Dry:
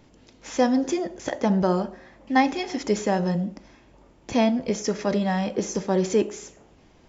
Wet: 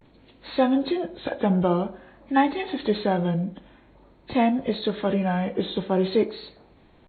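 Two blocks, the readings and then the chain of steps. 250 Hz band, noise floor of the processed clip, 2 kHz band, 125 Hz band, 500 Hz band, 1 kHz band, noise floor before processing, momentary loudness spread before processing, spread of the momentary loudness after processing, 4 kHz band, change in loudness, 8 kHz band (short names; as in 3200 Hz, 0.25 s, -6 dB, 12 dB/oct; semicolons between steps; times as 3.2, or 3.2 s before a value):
0.0 dB, -56 dBFS, -1.5 dB, +1.0 dB, 0.0 dB, 0.0 dB, -56 dBFS, 8 LU, 7 LU, +1.0 dB, 0.0 dB, n/a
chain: nonlinear frequency compression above 1400 Hz 1.5:1; vibrato 0.5 Hz 72 cents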